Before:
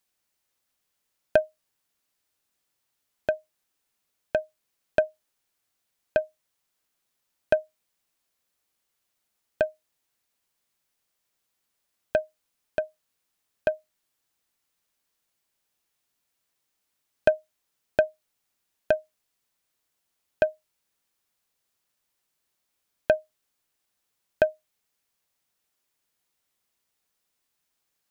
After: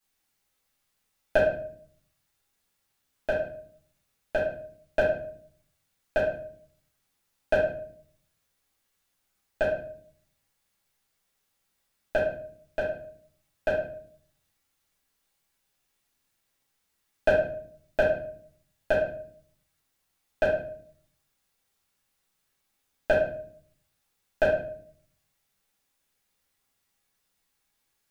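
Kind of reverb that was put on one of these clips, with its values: shoebox room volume 68 m³, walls mixed, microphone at 2.3 m; gain -7 dB

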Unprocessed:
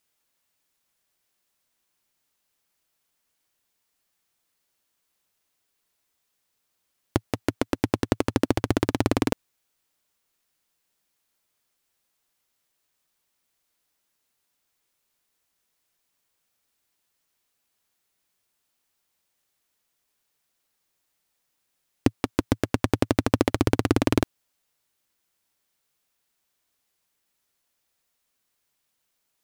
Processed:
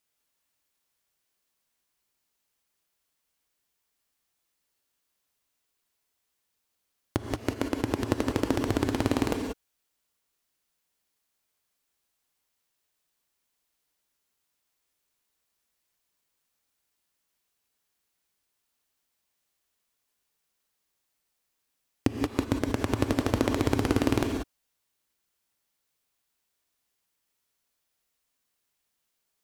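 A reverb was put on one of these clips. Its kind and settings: non-linear reverb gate 0.21 s rising, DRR 4 dB; gain -4.5 dB

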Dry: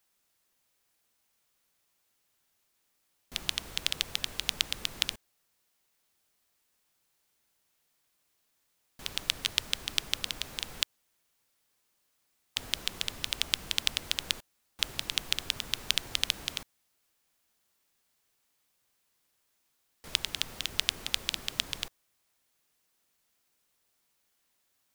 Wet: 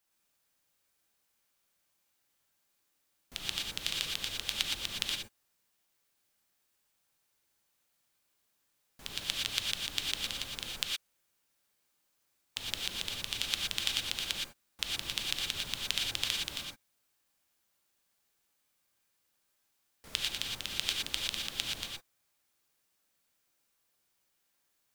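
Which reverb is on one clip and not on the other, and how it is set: non-linear reverb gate 0.14 s rising, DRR -1.5 dB; gain -5.5 dB

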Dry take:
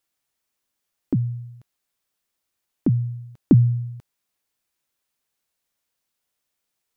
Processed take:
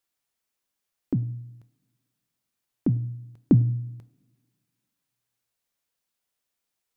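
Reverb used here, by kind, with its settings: two-slope reverb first 0.53 s, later 1.9 s, from -20 dB, DRR 14 dB; gain -3.5 dB

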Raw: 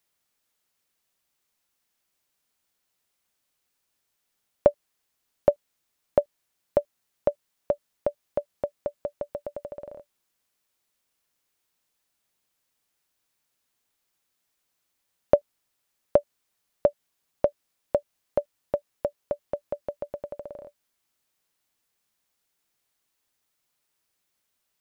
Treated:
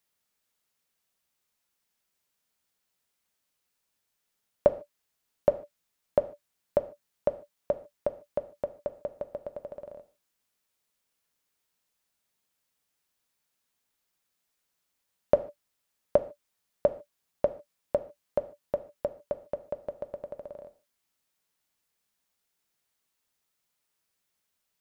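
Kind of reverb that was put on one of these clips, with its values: non-linear reverb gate 0.17 s falling, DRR 9.5 dB; gain -3 dB

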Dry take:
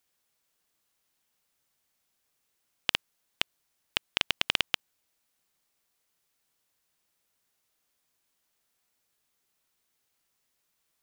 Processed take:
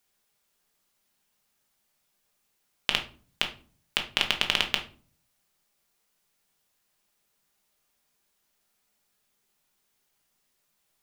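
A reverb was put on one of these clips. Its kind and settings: shoebox room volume 310 m³, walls furnished, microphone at 1.3 m; gain +1.5 dB

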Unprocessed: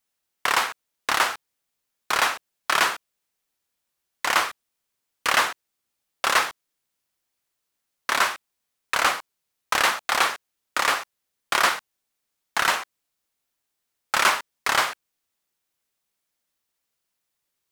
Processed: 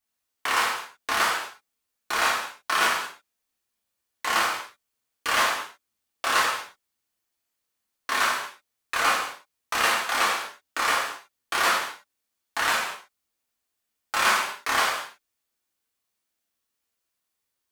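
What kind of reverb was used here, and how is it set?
non-linear reverb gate 0.26 s falling, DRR -4.5 dB; gain -7 dB

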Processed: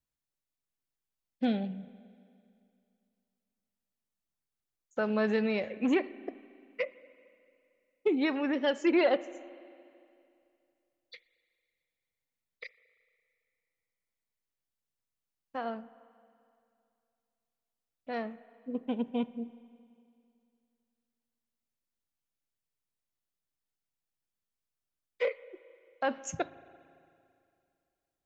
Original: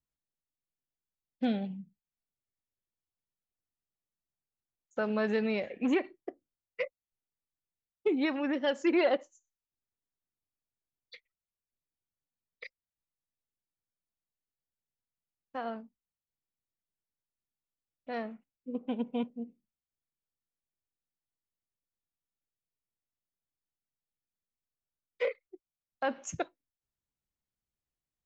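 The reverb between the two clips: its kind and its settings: spring tank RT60 2.5 s, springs 37/56 ms, chirp 75 ms, DRR 17 dB; gain +1 dB

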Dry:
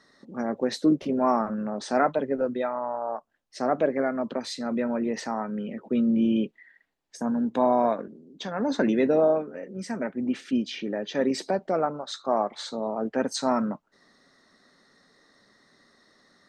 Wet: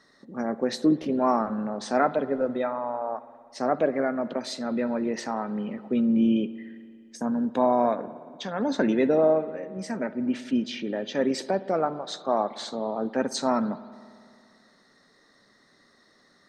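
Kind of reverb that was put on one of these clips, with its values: spring tank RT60 2.2 s, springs 57 ms, chirp 45 ms, DRR 15 dB

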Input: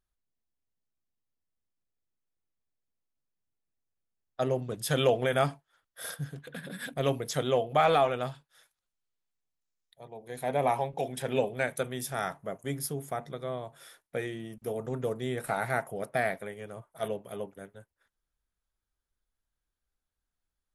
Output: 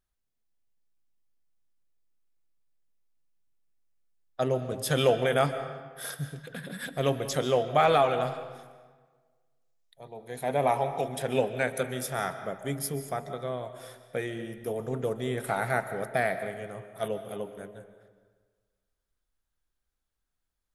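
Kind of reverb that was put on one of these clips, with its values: digital reverb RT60 1.5 s, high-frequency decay 0.65×, pre-delay 0.1 s, DRR 10.5 dB; gain +1.5 dB

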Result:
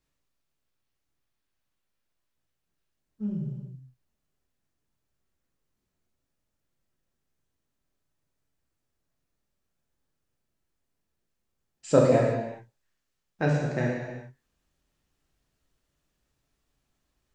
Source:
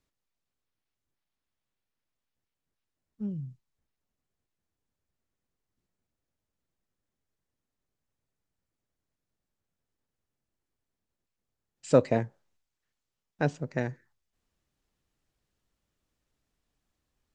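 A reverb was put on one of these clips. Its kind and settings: non-linear reverb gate 0.44 s falling, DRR -3.5 dB; gain -1 dB

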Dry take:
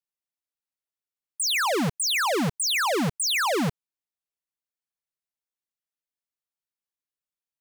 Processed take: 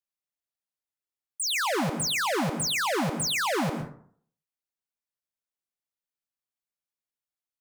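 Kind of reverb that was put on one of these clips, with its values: plate-style reverb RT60 0.56 s, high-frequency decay 0.45×, pre-delay 0.1 s, DRR 6 dB; gain -3.5 dB

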